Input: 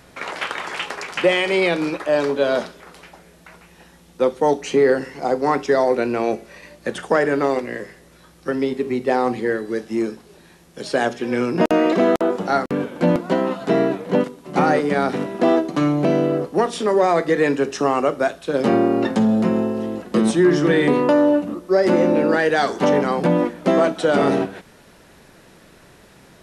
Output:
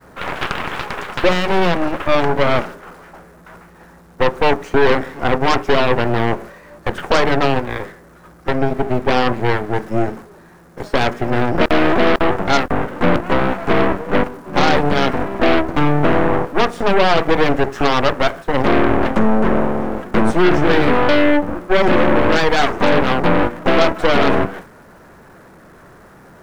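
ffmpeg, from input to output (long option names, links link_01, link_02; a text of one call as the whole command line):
ffmpeg -i in.wav -af "aeval=exprs='val(0)+0.5*0.0355*sgn(val(0))':channel_layout=same,highshelf=frequency=2100:width_type=q:width=1.5:gain=-11.5,agate=range=-33dB:threshold=-28dB:ratio=3:detection=peak,aeval=exprs='0.668*(cos(1*acos(clip(val(0)/0.668,-1,1)))-cos(1*PI/2))+0.188*(cos(8*acos(clip(val(0)/0.668,-1,1)))-cos(8*PI/2))':channel_layout=same,volume=-1dB" out.wav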